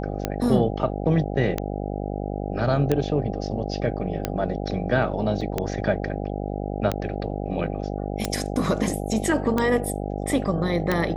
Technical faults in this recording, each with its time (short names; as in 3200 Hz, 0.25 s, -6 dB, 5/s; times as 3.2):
buzz 50 Hz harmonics 16 -29 dBFS
tick 45 rpm -9 dBFS
5.41 gap 3.5 ms